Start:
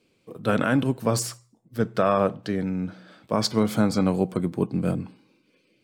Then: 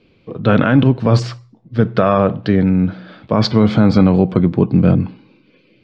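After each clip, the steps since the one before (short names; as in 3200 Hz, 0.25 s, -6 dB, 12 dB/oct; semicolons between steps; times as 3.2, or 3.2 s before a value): LPF 4200 Hz 24 dB/oct; low shelf 120 Hz +11.5 dB; maximiser +11.5 dB; gain -1 dB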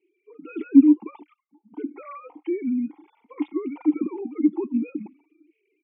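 sine-wave speech; vowel filter u; endless flanger 3.2 ms +2 Hz; gain -1.5 dB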